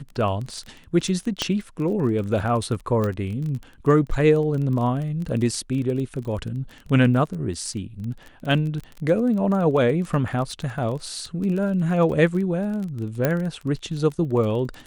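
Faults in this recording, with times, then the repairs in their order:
surface crackle 22 per second −29 dBFS
0:01.42: click −8 dBFS
0:03.04: click −14 dBFS
0:13.25: click −7 dBFS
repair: click removal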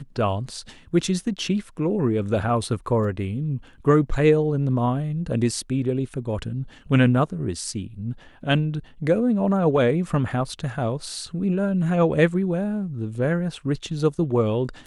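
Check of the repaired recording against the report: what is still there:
0:03.04: click

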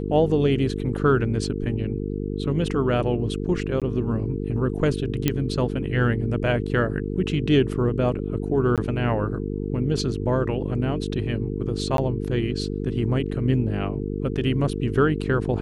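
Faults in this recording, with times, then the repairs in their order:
mains buzz 50 Hz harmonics 9 −28 dBFS
0:03.80–0:03.82: drop-out 17 ms
0:05.28: click −6 dBFS
0:08.76–0:08.78: drop-out 17 ms
0:11.97–0:11.98: drop-out 12 ms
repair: click removal
hum removal 50 Hz, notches 9
repair the gap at 0:03.80, 17 ms
repair the gap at 0:08.76, 17 ms
repair the gap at 0:11.97, 12 ms

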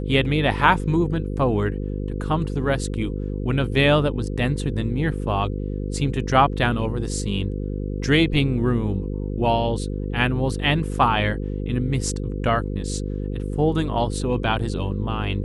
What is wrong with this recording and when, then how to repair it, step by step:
mains buzz 50 Hz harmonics 10 −27 dBFS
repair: hum removal 50 Hz, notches 10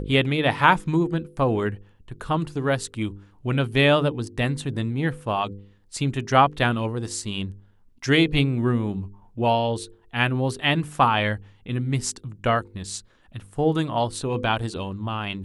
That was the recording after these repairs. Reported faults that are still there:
none of them is left

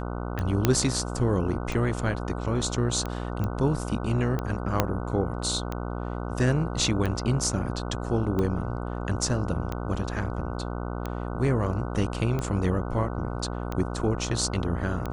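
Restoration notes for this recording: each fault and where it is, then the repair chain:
mains buzz 60 Hz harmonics 25 −32 dBFS
scratch tick 45 rpm −17 dBFS
0:00.65: click −6 dBFS
0:03.44: click −18 dBFS
0:04.80: click −6 dBFS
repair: click removal
hum removal 60 Hz, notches 25

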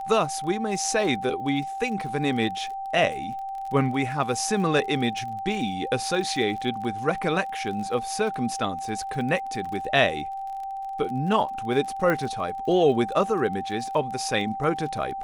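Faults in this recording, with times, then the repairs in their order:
surface crackle 34 per second −34 dBFS
whistle 780 Hz −30 dBFS
0:12.10: click −13 dBFS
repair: click removal
notch filter 780 Hz, Q 30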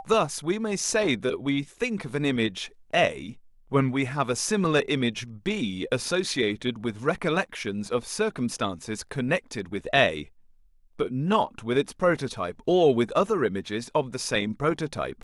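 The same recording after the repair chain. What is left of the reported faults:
0:12.10: click

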